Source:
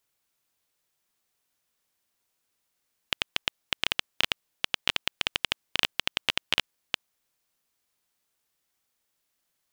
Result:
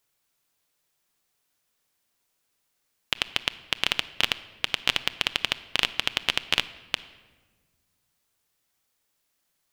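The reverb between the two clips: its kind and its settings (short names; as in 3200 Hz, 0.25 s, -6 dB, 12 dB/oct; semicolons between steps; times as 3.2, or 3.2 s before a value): shoebox room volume 1200 m³, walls mixed, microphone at 0.35 m; gain +2.5 dB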